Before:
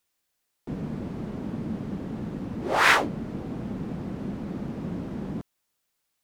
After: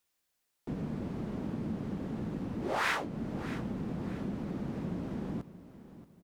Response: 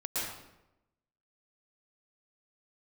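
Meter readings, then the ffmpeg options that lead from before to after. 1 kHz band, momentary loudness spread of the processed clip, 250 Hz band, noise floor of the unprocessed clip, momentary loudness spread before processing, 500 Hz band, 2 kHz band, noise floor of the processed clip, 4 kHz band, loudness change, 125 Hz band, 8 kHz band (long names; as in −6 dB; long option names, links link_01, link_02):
−10.5 dB, 14 LU, −4.0 dB, −78 dBFS, 14 LU, −6.0 dB, −12.0 dB, −80 dBFS, −12.0 dB, −7.5 dB, −4.0 dB, −11.5 dB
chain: -filter_complex "[0:a]acompressor=threshold=-30dB:ratio=2.5,asplit=2[link_01][link_02];[link_02]aecho=0:1:629|1258|1887:0.178|0.064|0.023[link_03];[link_01][link_03]amix=inputs=2:normalize=0,volume=-2.5dB"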